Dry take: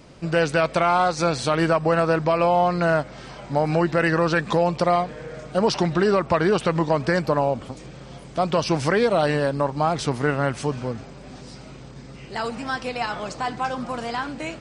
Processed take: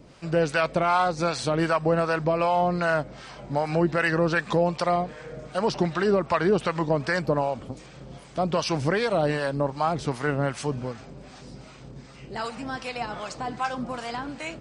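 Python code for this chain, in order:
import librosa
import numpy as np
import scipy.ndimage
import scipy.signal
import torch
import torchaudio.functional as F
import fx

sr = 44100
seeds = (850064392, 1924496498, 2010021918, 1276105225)

y = fx.harmonic_tremolo(x, sr, hz=2.6, depth_pct=70, crossover_hz=680.0)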